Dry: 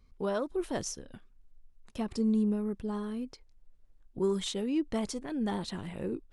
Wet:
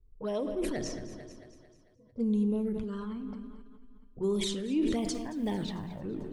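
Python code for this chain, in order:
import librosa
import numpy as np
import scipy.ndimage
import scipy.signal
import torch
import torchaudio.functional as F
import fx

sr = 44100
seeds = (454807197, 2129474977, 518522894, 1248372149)

y = fx.hum_notches(x, sr, base_hz=60, count=4)
y = fx.wow_flutter(y, sr, seeds[0], rate_hz=2.1, depth_cents=71.0)
y = fx.octave_resonator(y, sr, note='B', decay_s=0.21, at=(1.04, 2.16))
y = fx.env_flanger(y, sr, rest_ms=2.6, full_db=-26.5)
y = fx.env_lowpass(y, sr, base_hz=350.0, full_db=-30.0)
y = fx.quant_companded(y, sr, bits=8, at=(4.98, 6.01))
y = fx.echo_thinned(y, sr, ms=223, feedback_pct=52, hz=170.0, wet_db=-15.0)
y = fx.room_shoebox(y, sr, seeds[1], volume_m3=840.0, walls='mixed', distance_m=0.44)
y = fx.sustainer(y, sr, db_per_s=27.0)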